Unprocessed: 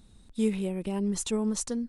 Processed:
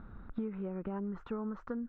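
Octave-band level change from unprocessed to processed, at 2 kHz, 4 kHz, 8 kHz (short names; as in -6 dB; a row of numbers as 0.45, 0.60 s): -8.5 dB, under -25 dB, under -40 dB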